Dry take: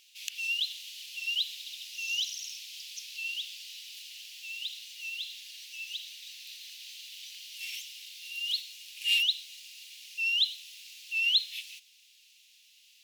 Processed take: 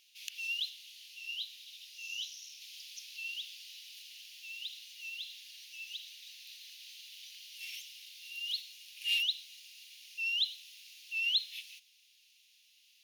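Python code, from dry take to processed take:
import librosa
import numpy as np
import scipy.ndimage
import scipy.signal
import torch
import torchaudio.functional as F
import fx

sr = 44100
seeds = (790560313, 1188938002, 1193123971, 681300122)

y = fx.notch(x, sr, hz=7700.0, q=5.5)
y = fx.detune_double(y, sr, cents=36, at=(0.69, 2.6), fade=0.02)
y = F.gain(torch.from_numpy(y), -5.0).numpy()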